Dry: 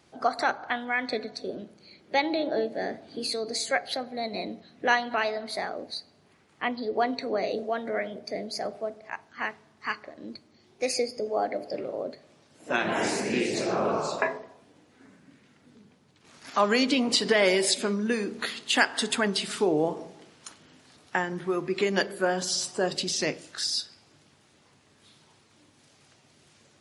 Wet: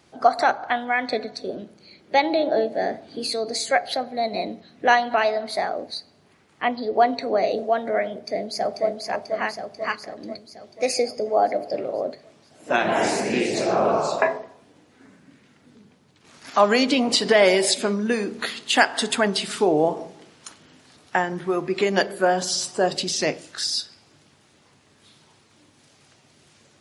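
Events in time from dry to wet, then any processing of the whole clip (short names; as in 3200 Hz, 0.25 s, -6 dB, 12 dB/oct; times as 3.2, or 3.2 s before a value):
8.11–8.87 echo throw 0.49 s, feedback 65%, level -3.5 dB
whole clip: dynamic EQ 700 Hz, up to +6 dB, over -41 dBFS, Q 2.1; gain +3.5 dB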